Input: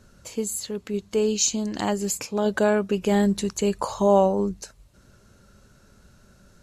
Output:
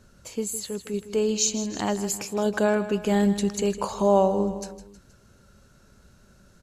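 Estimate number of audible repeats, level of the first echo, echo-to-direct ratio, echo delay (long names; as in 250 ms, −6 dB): 3, −13.0 dB, −11.5 dB, 158 ms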